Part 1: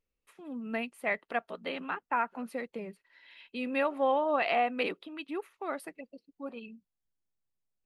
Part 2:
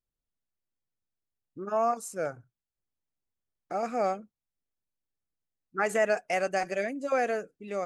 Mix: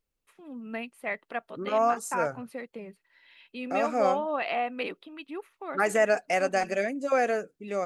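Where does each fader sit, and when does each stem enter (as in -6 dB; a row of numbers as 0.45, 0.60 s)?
-1.5, +2.5 dB; 0.00, 0.00 s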